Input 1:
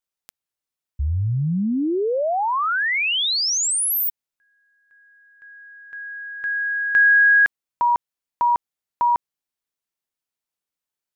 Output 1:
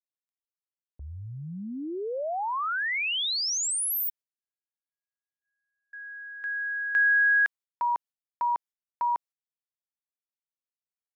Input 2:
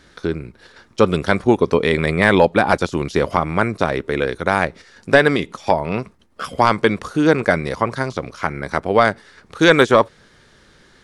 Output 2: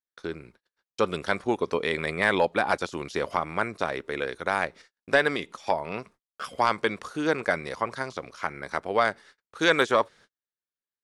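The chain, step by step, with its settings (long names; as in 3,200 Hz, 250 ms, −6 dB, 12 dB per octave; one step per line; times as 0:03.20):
noise gate −40 dBFS, range −43 dB
low-shelf EQ 300 Hz −11.5 dB
level −7 dB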